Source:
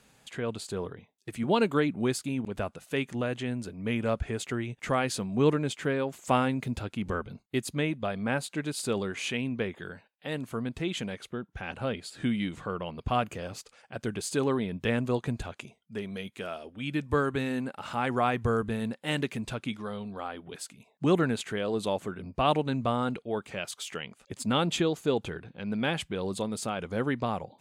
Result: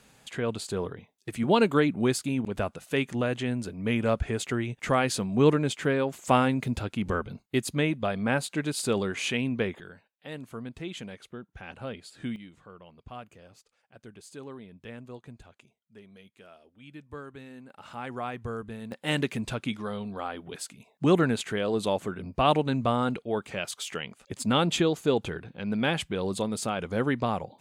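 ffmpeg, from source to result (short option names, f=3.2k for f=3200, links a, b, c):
-af "asetnsamples=n=441:p=0,asendcmd='9.8 volume volume -5.5dB;12.36 volume volume -15dB;17.7 volume volume -8dB;18.92 volume volume 2.5dB',volume=3dB"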